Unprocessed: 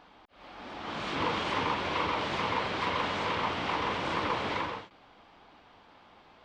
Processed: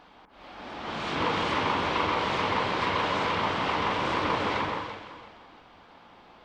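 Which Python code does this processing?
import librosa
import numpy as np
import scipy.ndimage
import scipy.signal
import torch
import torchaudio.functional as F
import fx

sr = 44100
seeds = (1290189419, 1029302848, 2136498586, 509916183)

y = fx.echo_alternate(x, sr, ms=168, hz=1800.0, feedback_pct=53, wet_db=-4)
y = y * 10.0 ** (2.5 / 20.0)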